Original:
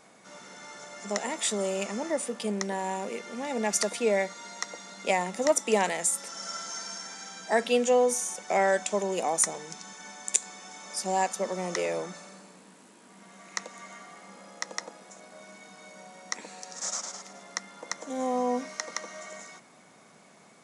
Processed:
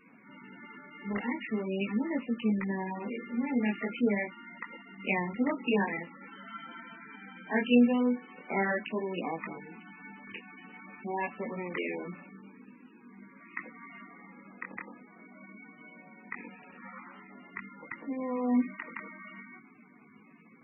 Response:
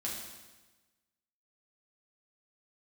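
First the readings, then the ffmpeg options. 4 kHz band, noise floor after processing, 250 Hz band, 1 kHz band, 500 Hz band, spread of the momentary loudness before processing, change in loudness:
−10.5 dB, −57 dBFS, +5.5 dB, −7.5 dB, −7.5 dB, 21 LU, −3.0 dB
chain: -af "flanger=delay=17.5:depth=7.6:speed=0.44,equalizer=frequency=250:width_type=o:width=0.67:gain=12,equalizer=frequency=630:width_type=o:width=0.67:gain=-11,equalizer=frequency=2500:width_type=o:width=0.67:gain=5" -ar 22050 -c:a libmp3lame -b:a 8k

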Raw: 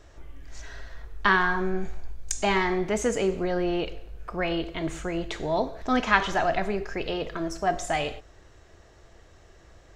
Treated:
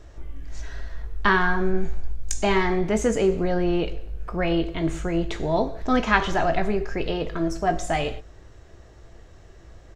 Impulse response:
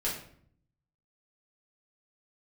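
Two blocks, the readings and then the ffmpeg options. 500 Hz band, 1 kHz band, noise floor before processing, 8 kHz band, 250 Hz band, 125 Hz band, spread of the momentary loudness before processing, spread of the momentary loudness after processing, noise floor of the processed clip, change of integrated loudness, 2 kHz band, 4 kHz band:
+3.5 dB, +1.5 dB, −54 dBFS, +0.5 dB, +4.5 dB, +6.5 dB, 20 LU, 17 LU, −48 dBFS, +2.5 dB, +1.0 dB, +0.5 dB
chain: -filter_complex "[0:a]lowshelf=frequency=410:gain=7,asplit=2[link_01][link_02];[link_02]adelay=18,volume=-11.5dB[link_03];[link_01][link_03]amix=inputs=2:normalize=0"

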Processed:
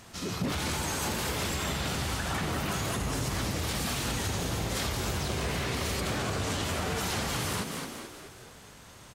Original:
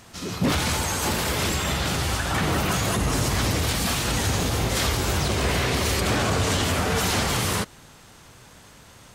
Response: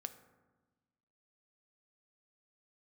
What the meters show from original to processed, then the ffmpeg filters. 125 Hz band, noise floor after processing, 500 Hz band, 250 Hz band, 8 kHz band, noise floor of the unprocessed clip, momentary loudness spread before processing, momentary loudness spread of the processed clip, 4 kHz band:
−8.0 dB, −51 dBFS, −7.5 dB, −7.0 dB, −7.5 dB, −49 dBFS, 2 LU, 10 LU, −7.5 dB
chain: -filter_complex "[0:a]asplit=6[link_01][link_02][link_03][link_04][link_05][link_06];[link_02]adelay=215,afreqshift=69,volume=-10dB[link_07];[link_03]adelay=430,afreqshift=138,volume=-16.4dB[link_08];[link_04]adelay=645,afreqshift=207,volume=-22.8dB[link_09];[link_05]adelay=860,afreqshift=276,volume=-29.1dB[link_10];[link_06]adelay=1075,afreqshift=345,volume=-35.5dB[link_11];[link_01][link_07][link_08][link_09][link_10][link_11]amix=inputs=6:normalize=0,asplit=2[link_12][link_13];[1:a]atrim=start_sample=2205,asetrate=35280,aresample=44100[link_14];[link_13][link_14]afir=irnorm=-1:irlink=0,volume=-7dB[link_15];[link_12][link_15]amix=inputs=2:normalize=0,acompressor=threshold=-23dB:ratio=6,volume=-5dB"

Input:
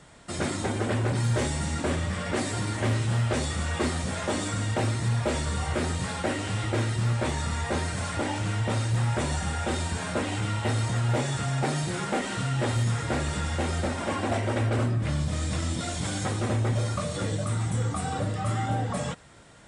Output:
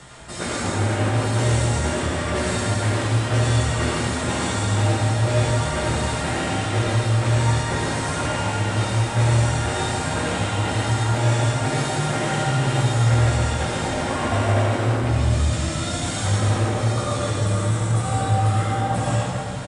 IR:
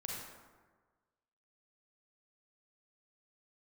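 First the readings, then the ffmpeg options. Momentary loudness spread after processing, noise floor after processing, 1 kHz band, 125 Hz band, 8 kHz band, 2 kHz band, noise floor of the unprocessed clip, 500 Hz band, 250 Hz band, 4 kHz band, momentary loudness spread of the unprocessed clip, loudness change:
4 LU, −27 dBFS, +7.5 dB, +7.0 dB, +6.5 dB, +6.5 dB, −33 dBFS, +6.0 dB, +4.5 dB, +7.0 dB, 4 LU, +6.5 dB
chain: -filter_complex "[0:a]lowshelf=frequency=300:gain=-11,areverse,acompressor=mode=upward:threshold=-33dB:ratio=2.5,areverse,flanger=delay=15.5:depth=4:speed=0.47,acrossover=split=200[link_01][link_02];[link_01]aeval=exprs='0.0335*sin(PI/2*1.58*val(0)/0.0335)':channel_layout=same[link_03];[link_03][link_02]amix=inputs=2:normalize=0,asplit=2[link_04][link_05];[link_05]adelay=163.3,volume=-7dB,highshelf=frequency=4000:gain=-3.67[link_06];[link_04][link_06]amix=inputs=2:normalize=0[link_07];[1:a]atrim=start_sample=2205,asetrate=25578,aresample=44100[link_08];[link_07][link_08]afir=irnorm=-1:irlink=0,volume=6.5dB"

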